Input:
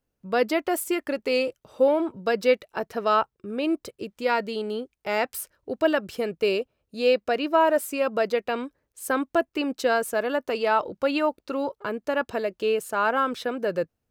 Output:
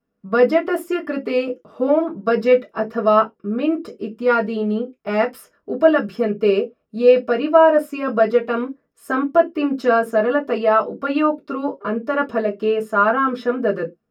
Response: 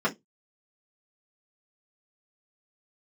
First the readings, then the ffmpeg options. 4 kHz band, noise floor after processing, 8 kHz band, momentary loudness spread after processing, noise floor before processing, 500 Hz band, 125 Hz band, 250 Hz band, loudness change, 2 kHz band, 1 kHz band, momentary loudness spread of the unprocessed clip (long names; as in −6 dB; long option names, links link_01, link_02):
−2.0 dB, −71 dBFS, below −10 dB, 9 LU, −81 dBFS, +7.0 dB, can't be measured, +8.0 dB, +6.5 dB, +4.0 dB, +5.5 dB, 9 LU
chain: -filter_complex "[1:a]atrim=start_sample=2205,afade=type=out:start_time=0.18:duration=0.01,atrim=end_sample=8379[link_01];[0:a][link_01]afir=irnorm=-1:irlink=0,volume=-7.5dB"